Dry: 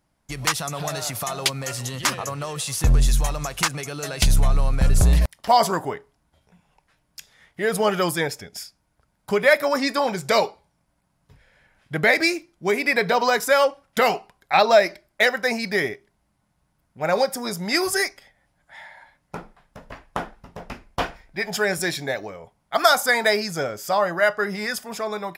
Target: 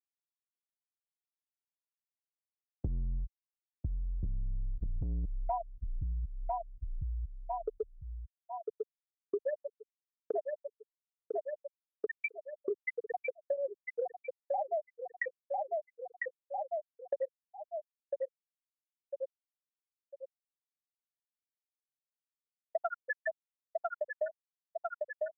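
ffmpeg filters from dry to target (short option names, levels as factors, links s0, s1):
-filter_complex "[0:a]afftfilt=real='re*gte(hypot(re,im),1.26)':imag='im*gte(hypot(re,im),1.26)':win_size=1024:overlap=0.75,agate=range=0.0224:threshold=0.0158:ratio=3:detection=peak,highpass=f=51:p=1,asplit=2[s0][s1];[s1]adelay=1000,lowpass=f=3800:p=1,volume=0.299,asplit=2[s2][s3];[s3]adelay=1000,lowpass=f=3800:p=1,volume=0.29,asplit=2[s4][s5];[s5]adelay=1000,lowpass=f=3800:p=1,volume=0.29[s6];[s0][s2][s4][s6]amix=inputs=4:normalize=0,acrossover=split=160|530|2700[s7][s8][s9][s10];[s7]asoftclip=type=tanh:threshold=0.0531[s11];[s11][s8][s9][s10]amix=inputs=4:normalize=0,acompressor=threshold=0.00794:ratio=8,volume=2.66"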